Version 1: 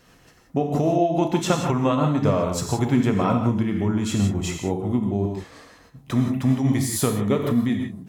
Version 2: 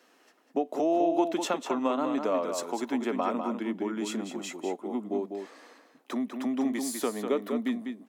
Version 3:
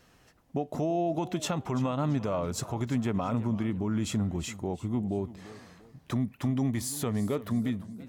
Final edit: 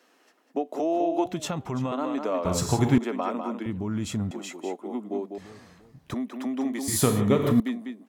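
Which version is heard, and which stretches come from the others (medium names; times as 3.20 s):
2
1.26–1.92 s: from 3
2.45–2.98 s: from 1
3.66–4.31 s: from 3
5.38–6.14 s: from 3
6.88–7.60 s: from 1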